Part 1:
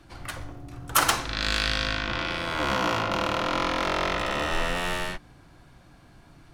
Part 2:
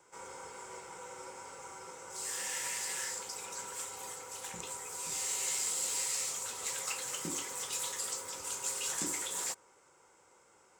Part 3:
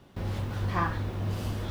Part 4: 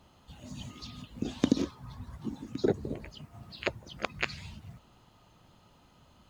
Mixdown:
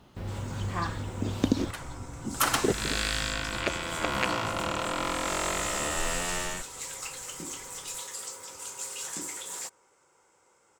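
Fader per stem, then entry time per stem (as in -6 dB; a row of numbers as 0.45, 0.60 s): -4.5, -1.0, -3.5, +0.5 dB; 1.45, 0.15, 0.00, 0.00 s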